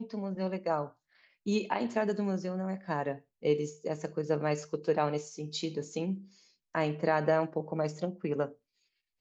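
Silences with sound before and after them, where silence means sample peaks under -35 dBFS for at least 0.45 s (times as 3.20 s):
0.86–1.46 s
6.15–6.75 s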